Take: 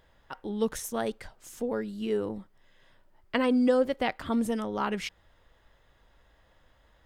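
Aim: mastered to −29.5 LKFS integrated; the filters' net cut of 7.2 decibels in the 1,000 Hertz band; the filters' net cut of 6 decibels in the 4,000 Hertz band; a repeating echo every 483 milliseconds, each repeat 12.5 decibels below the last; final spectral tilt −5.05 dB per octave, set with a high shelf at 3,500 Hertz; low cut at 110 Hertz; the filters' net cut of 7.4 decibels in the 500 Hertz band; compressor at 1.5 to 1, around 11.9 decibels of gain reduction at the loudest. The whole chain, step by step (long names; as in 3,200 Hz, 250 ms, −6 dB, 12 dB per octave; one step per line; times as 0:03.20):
high-pass filter 110 Hz
parametric band 500 Hz −6.5 dB
parametric band 1,000 Hz −6.5 dB
high-shelf EQ 3,500 Hz −5.5 dB
parametric band 4,000 Hz −4.5 dB
downward compressor 1.5 to 1, threshold −58 dBFS
repeating echo 483 ms, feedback 24%, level −12.5 dB
level +14.5 dB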